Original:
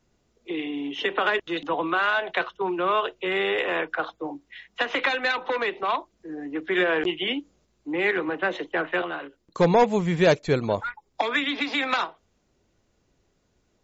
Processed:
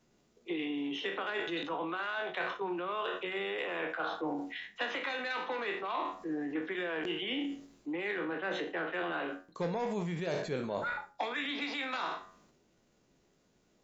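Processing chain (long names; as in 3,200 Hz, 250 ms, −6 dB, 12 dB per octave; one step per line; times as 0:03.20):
peak hold with a decay on every bin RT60 0.33 s
hum removal 93.02 Hz, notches 21
reversed playback
downward compressor 10 to 1, threshold −31 dBFS, peak gain reduction 18 dB
reversed playback
transient designer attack +3 dB, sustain +7 dB
in parallel at +1 dB: speech leveller within 4 dB 0.5 s
on the sum: low shelf with overshoot 120 Hz −7.5 dB, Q 1.5
level −9 dB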